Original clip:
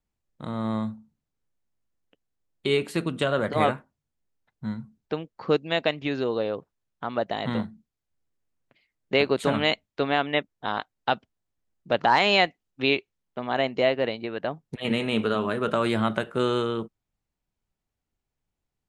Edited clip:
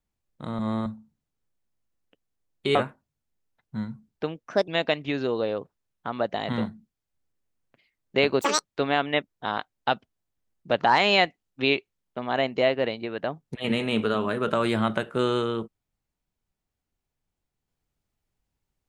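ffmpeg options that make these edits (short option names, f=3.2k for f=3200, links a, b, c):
-filter_complex "[0:a]asplit=8[a][b][c][d][e][f][g][h];[a]atrim=end=0.592[i];[b]atrim=start=0.588:end=0.862,asetpts=PTS-STARTPTS,areverse[j];[c]atrim=start=0.858:end=2.752[k];[d]atrim=start=3.638:end=5.324[l];[e]atrim=start=5.32:end=5.65,asetpts=PTS-STARTPTS,asetrate=58212,aresample=44100[m];[f]atrim=start=5.646:end=9.384[n];[g]atrim=start=9.38:end=9.85,asetpts=PTS-STARTPTS,asetrate=87759,aresample=44100[o];[h]atrim=start=9.846[p];[i][j]acrossfade=d=0.004:c1=hsin:c2=hsin[q];[q][k]acrossfade=d=0.004:c1=hsin:c2=hsin[r];[r][l]acrossfade=d=0.004:c1=hsin:c2=hsin[s];[s][m]acrossfade=d=0.004:c1=hsin:c2=hsin[t];[t][n]acrossfade=d=0.004:c1=hsin:c2=hsin[u];[u][o]acrossfade=d=0.004:c1=hsin:c2=hsin[v];[v][p]acrossfade=d=0.004:c1=hsin:c2=hsin"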